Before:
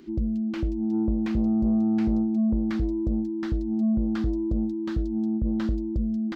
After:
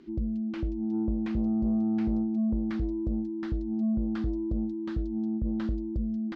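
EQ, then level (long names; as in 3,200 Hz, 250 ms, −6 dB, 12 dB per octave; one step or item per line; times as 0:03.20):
high-frequency loss of the air 86 metres
−4.0 dB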